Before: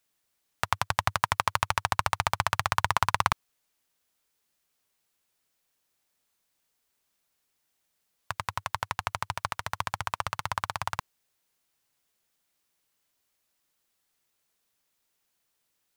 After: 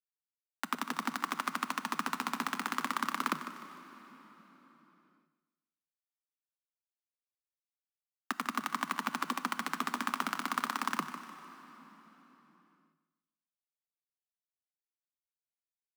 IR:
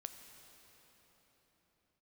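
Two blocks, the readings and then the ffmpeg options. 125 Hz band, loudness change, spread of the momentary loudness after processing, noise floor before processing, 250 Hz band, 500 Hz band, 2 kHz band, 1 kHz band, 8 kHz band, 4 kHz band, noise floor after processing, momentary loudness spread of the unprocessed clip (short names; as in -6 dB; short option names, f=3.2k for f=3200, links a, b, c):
-18.0 dB, -5.5 dB, 16 LU, -77 dBFS, +8.5 dB, -9.0 dB, -5.5 dB, -6.5 dB, -6.0 dB, -6.5 dB, under -85 dBFS, 8 LU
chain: -filter_complex "[0:a]equalizer=f=78:w=5.4:g=3,areverse,acompressor=threshold=-33dB:ratio=6,areverse,alimiter=level_in=5.5dB:limit=-24dB:level=0:latency=1:release=327,volume=-5.5dB,acontrast=64,aeval=exprs='val(0)+0.00126*(sin(2*PI*50*n/s)+sin(2*PI*2*50*n/s)/2+sin(2*PI*3*50*n/s)/3+sin(2*PI*4*50*n/s)/4+sin(2*PI*5*50*n/s)/5)':c=same,acrusher=bits=7:mix=0:aa=0.000001,afreqshift=150,aecho=1:1:151|302|453|604:0.237|0.0972|0.0399|0.0163,asplit=2[a][b];[1:a]atrim=start_sample=2205[c];[b][c]afir=irnorm=-1:irlink=0,volume=6.5dB[d];[a][d]amix=inputs=2:normalize=0,volume=1.5dB"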